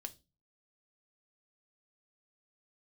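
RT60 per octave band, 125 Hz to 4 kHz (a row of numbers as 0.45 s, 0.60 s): 0.55 s, 0.45 s, 0.30 s, 0.25 s, 0.20 s, 0.30 s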